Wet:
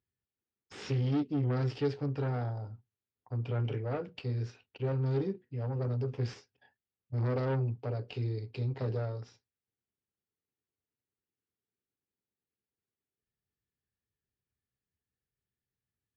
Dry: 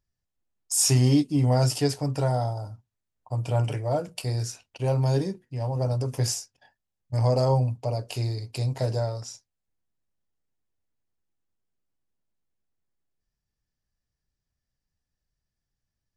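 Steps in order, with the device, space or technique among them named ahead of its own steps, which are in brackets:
guitar amplifier (tube saturation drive 24 dB, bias 0.5; bass and treble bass +3 dB, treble −5 dB; loudspeaker in its box 98–4,000 Hz, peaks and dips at 160 Hz −5 dB, 420 Hz +7 dB, 640 Hz −8 dB, 1,000 Hz −5 dB)
level −3 dB

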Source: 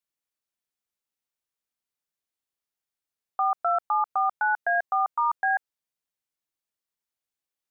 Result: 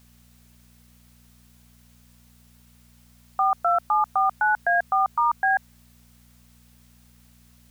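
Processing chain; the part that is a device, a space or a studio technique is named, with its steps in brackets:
video cassette with head-switching buzz (hum with harmonics 60 Hz, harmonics 4, −59 dBFS −3 dB per octave; white noise bed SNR 33 dB)
level +3 dB

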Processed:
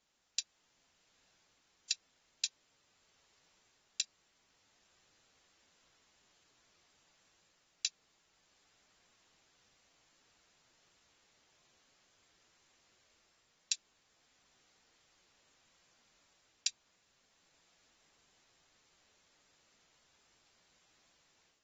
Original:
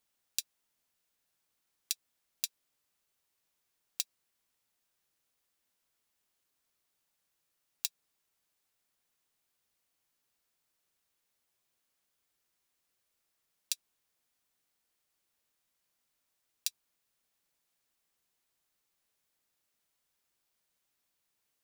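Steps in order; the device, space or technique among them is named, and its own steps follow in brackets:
low-bitrate web radio (automatic gain control gain up to 8 dB; brickwall limiter −12.5 dBFS, peak gain reduction 10.5 dB; level +5 dB; AAC 24 kbit/s 44,100 Hz)

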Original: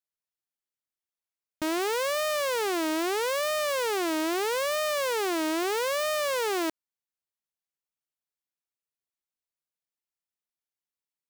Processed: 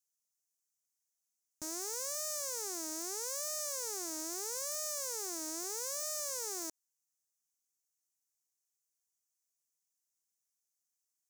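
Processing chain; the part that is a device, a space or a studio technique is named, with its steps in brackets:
over-bright horn tweeter (high shelf with overshoot 4,400 Hz +13.5 dB, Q 3; brickwall limiter −16 dBFS, peak gain reduction 9.5 dB)
level −8 dB

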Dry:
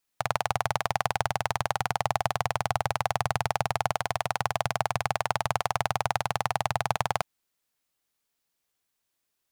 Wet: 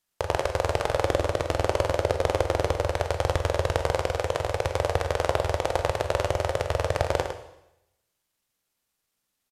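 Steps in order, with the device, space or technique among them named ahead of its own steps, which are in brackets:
0:01.01–0:02.76: dynamic equaliser 420 Hz, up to +6 dB, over −44 dBFS, Q 1.5
monster voice (pitch shifter −6 semitones; low-shelf EQ 170 Hz +5 dB; single-tap delay 106 ms −9 dB; convolution reverb RT60 0.85 s, pre-delay 14 ms, DRR 7 dB)

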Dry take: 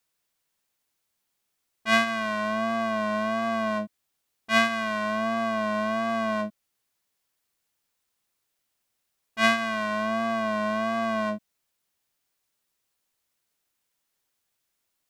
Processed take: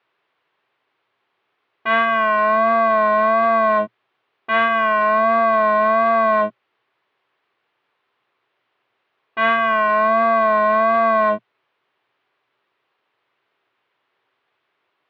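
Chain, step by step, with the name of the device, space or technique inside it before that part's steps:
overdrive pedal into a guitar cabinet (mid-hump overdrive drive 24 dB, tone 1,600 Hz, clips at −4.5 dBFS; loudspeaker in its box 98–3,400 Hz, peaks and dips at 120 Hz +9 dB, 200 Hz −5 dB, 390 Hz +7 dB, 1,100 Hz +3 dB)

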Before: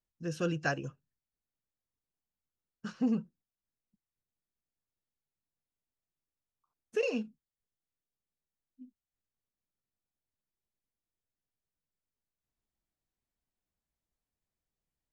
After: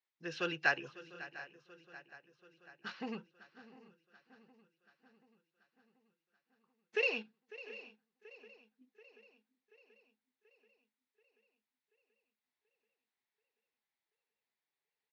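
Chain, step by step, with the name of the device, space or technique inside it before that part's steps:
kitchen radio (loudspeaker in its box 200–3,800 Hz, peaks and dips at 250 Hz −6 dB, 380 Hz +6 dB, 860 Hz +8 dB, 2,000 Hz +5 dB, 3,000 Hz −5 dB)
tilt shelving filter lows −9.5 dB, about 1,400 Hz
single-tap delay 699 ms −19.5 dB
feedback echo with a long and a short gap by turns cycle 733 ms, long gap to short 3 to 1, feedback 56%, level −17.5 dB
dynamic equaliser 3,400 Hz, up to +4 dB, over −57 dBFS, Q 0.93

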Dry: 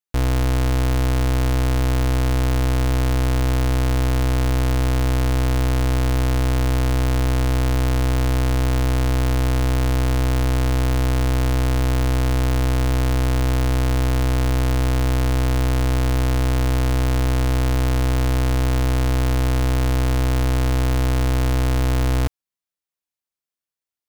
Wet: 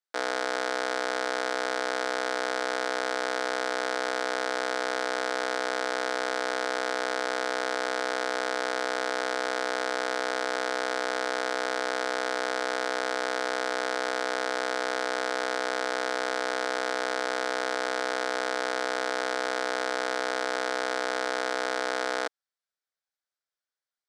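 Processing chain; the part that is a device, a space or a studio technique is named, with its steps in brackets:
phone speaker on a table (loudspeaker in its box 450–7,600 Hz, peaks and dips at 1,000 Hz −5 dB, 1,500 Hz +6 dB, 2,700 Hz −9 dB, 6,700 Hz −6 dB)
level +1 dB

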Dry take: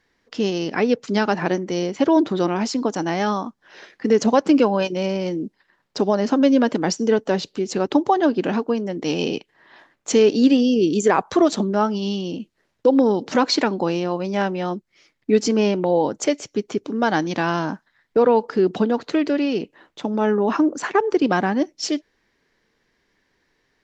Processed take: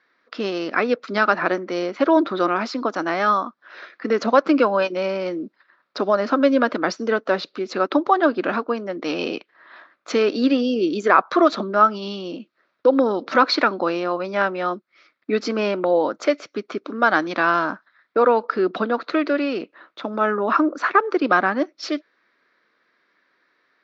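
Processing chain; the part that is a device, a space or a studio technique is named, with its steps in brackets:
phone earpiece (loudspeaker in its box 420–4,000 Hz, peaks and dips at 430 Hz −7 dB, 840 Hz −9 dB, 1,300 Hz +8 dB, 1,900 Hz −3 dB, 3,000 Hz −9 dB)
level +5.5 dB

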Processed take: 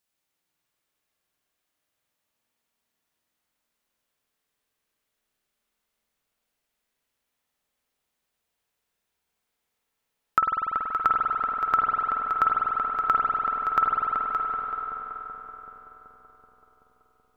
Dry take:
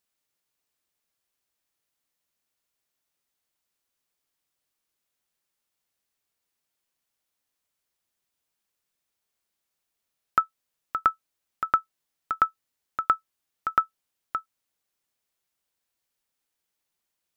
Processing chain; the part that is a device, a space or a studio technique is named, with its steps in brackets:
dub delay into a spring reverb (feedback echo with a low-pass in the loop 380 ms, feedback 72%, low-pass 1,400 Hz, level −4.5 dB; spring reverb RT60 3.6 s, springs 48 ms, chirp 45 ms, DRR −2 dB)

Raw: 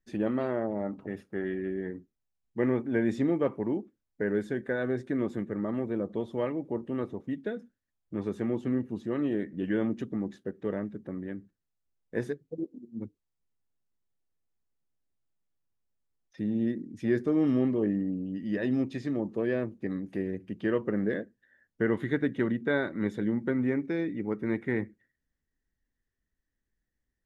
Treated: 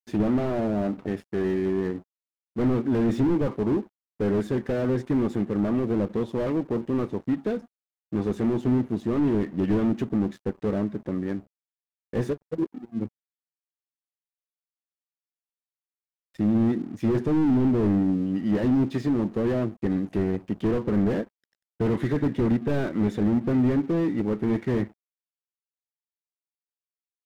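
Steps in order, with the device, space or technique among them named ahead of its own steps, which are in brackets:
early transistor amplifier (dead-zone distortion −57 dBFS; slew-rate limiting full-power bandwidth 11 Hz)
level +9 dB

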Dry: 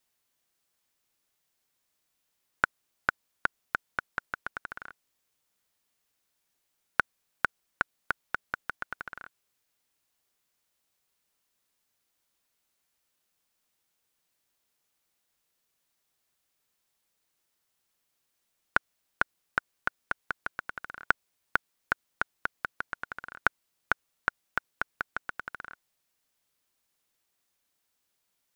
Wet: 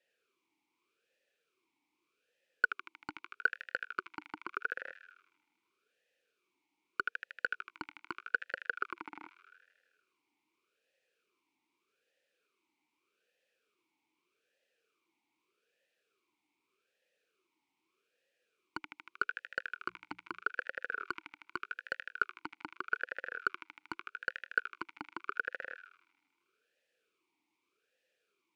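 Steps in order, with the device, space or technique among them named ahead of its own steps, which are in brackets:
0:19.73–0:20.45: mains-hum notches 60/120/180 Hz
delay with a high-pass on its return 78 ms, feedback 70%, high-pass 3,300 Hz, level −3.5 dB
talk box (tube saturation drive 23 dB, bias 0.25; formant filter swept between two vowels e-u 0.82 Hz)
level +16 dB

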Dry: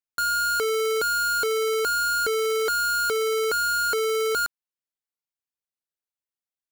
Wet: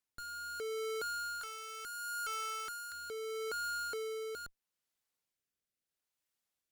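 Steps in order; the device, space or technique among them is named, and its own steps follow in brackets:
0:01.41–0:02.92: high-pass filter 1,300 Hz 24 dB per octave
overdriven rotary cabinet (tube saturation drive 48 dB, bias 0.65; rotating-speaker cabinet horn 0.75 Hz)
level +10.5 dB

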